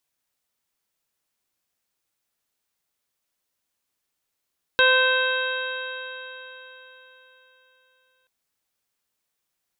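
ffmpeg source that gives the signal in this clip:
ffmpeg -f lavfi -i "aevalsrc='0.1*pow(10,-3*t/3.91)*sin(2*PI*512.61*t)+0.0631*pow(10,-3*t/3.91)*sin(2*PI*1028.9*t)+0.158*pow(10,-3*t/3.91)*sin(2*PI*1552.5*t)+0.0178*pow(10,-3*t/3.91)*sin(2*PI*2086.95*t)+0.075*pow(10,-3*t/3.91)*sin(2*PI*2635.68*t)+0.0501*pow(10,-3*t/3.91)*sin(2*PI*3201.96*t)+0.075*pow(10,-3*t/3.91)*sin(2*PI*3788.88*t)':duration=3.48:sample_rate=44100" out.wav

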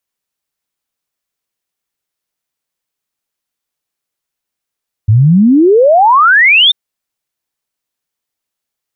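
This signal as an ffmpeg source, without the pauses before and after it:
ffmpeg -f lavfi -i "aevalsrc='0.668*clip(min(t,1.64-t)/0.01,0,1)*sin(2*PI*100*1.64/log(3700/100)*(exp(log(3700/100)*t/1.64)-1))':duration=1.64:sample_rate=44100" out.wav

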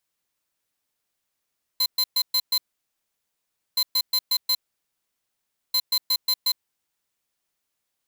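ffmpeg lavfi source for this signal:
ffmpeg -f lavfi -i "aevalsrc='0.0891*(2*lt(mod(4100*t,1),0.5)-1)*clip(min(mod(mod(t,1.97),0.18),0.06-mod(mod(t,1.97),0.18))/0.005,0,1)*lt(mod(t,1.97),0.9)':duration=5.91:sample_rate=44100" out.wav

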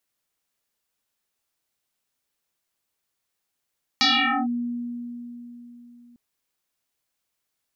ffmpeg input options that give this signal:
ffmpeg -f lavfi -i "aevalsrc='0.178*pow(10,-3*t/3.8)*sin(2*PI*240*t+10*clip(1-t/0.46,0,1)*sin(2*PI*2.17*240*t))':duration=2.15:sample_rate=44100" out.wav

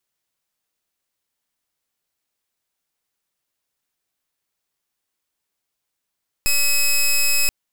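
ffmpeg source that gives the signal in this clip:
ffmpeg -f lavfi -i "aevalsrc='0.15*(2*lt(mod(2560*t,1),0.13)-1)':duration=1.03:sample_rate=44100" out.wav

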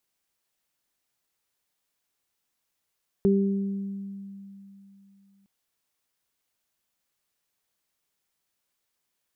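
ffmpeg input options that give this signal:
ffmpeg -f lavfi -i "aevalsrc='0.119*pow(10,-3*t/3.16)*sin(2*PI*197*t)+0.112*pow(10,-3*t/1.16)*sin(2*PI*394*t)':duration=2.21:sample_rate=44100" out.wav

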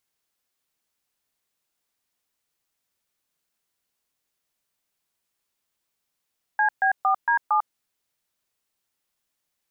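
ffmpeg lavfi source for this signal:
ffmpeg -f lavfi -i "aevalsrc='0.1*clip(min(mod(t,0.229),0.098-mod(t,0.229))/0.002,0,1)*(eq(floor(t/0.229),0)*(sin(2*PI*852*mod(t,0.229))+sin(2*PI*1633*mod(t,0.229)))+eq(floor(t/0.229),1)*(sin(2*PI*770*mod(t,0.229))+sin(2*PI*1633*mod(t,0.229)))+eq(floor(t/0.229),2)*(sin(2*PI*770*mod(t,0.229))+sin(2*PI*1209*mod(t,0.229)))+eq(floor(t/0.229),3)*(sin(2*PI*941*mod(t,0.229))+sin(2*PI*1633*mod(t,0.229)))+eq(floor(t/0.229),4)*(sin(2*PI*852*mod(t,0.229))+sin(2*PI*1209*mod(t,0.229))))':duration=1.145:sample_rate=44100" out.wav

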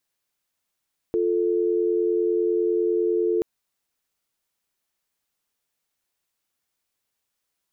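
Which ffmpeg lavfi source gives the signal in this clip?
ffmpeg -f lavfi -i "aevalsrc='0.0794*(sin(2*PI*350*t)+sin(2*PI*440*t))':duration=2.28:sample_rate=44100" out.wav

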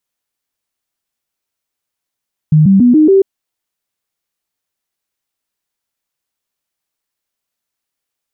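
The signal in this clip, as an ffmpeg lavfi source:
ffmpeg -f lavfi -i "aevalsrc='0.631*clip(min(mod(t,0.14),0.14-mod(t,0.14))/0.005,0,1)*sin(2*PI*154*pow(2,floor(t/0.14)/3)*mod(t,0.14))':duration=0.7:sample_rate=44100" out.wav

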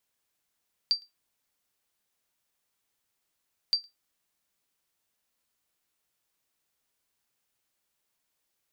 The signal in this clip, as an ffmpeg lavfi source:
ffmpeg -f lavfi -i "aevalsrc='0.158*(sin(2*PI*4680*mod(t,2.82))*exp(-6.91*mod(t,2.82)/0.16)+0.0335*sin(2*PI*4680*max(mod(t,2.82)-0.11,0))*exp(-6.91*max(mod(t,2.82)-0.11,0)/0.16))':duration=5.64:sample_rate=44100" out.wav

